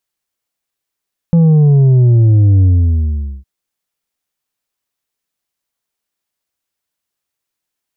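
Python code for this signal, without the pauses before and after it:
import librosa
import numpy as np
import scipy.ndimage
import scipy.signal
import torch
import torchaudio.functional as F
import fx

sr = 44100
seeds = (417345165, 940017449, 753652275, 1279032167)

y = fx.sub_drop(sr, level_db=-6.0, start_hz=170.0, length_s=2.11, drive_db=5.0, fade_s=0.81, end_hz=65.0)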